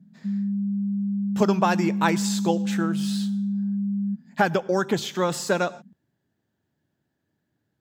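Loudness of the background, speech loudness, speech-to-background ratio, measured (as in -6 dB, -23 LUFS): -27.0 LUFS, -25.0 LUFS, 2.0 dB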